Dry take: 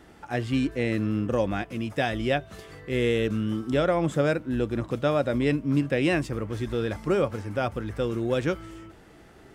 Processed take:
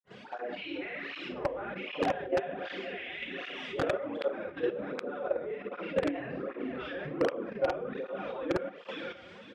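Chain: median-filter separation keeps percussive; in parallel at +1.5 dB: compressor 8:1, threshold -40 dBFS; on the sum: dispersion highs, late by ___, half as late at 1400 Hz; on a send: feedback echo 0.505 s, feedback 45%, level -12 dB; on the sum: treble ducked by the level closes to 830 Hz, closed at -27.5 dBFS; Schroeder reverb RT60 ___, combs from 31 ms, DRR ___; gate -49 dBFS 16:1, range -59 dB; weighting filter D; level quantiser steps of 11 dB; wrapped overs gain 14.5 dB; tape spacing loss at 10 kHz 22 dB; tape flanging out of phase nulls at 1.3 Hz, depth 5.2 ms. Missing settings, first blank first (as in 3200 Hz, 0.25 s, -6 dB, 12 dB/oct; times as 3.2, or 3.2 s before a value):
67 ms, 0.53 s, -5.5 dB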